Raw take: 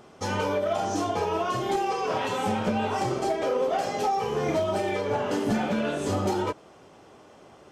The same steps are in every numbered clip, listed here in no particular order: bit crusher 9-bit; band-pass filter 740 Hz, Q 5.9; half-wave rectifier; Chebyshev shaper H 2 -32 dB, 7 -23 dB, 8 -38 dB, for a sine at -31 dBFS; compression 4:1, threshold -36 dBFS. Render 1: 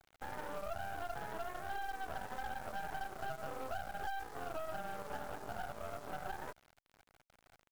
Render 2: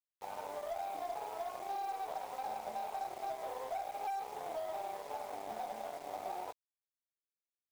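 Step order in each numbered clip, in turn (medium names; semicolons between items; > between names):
band-pass filter > compression > bit crusher > Chebyshev shaper > half-wave rectifier; half-wave rectifier > band-pass filter > Chebyshev shaper > bit crusher > compression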